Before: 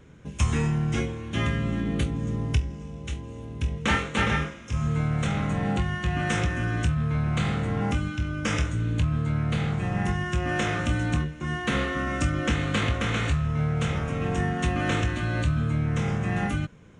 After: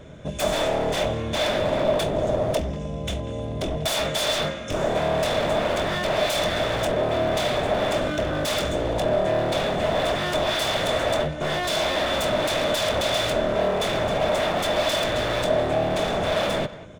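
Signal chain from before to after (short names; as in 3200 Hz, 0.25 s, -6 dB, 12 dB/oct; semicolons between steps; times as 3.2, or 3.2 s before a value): wavefolder -29.5 dBFS; small resonant body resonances 620/3500 Hz, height 17 dB, ringing for 40 ms; speakerphone echo 0.19 s, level -15 dB; gain +6.5 dB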